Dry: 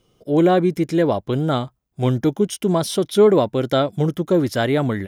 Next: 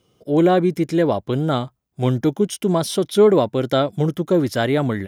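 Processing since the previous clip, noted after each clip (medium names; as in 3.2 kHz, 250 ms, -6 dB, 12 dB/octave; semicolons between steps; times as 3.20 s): high-pass 59 Hz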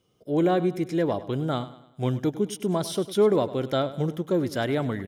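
feedback delay 101 ms, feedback 45%, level -15.5 dB; trim -7 dB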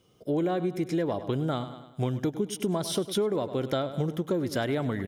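compression, threshold -30 dBFS, peak gain reduction 13.5 dB; trim +5 dB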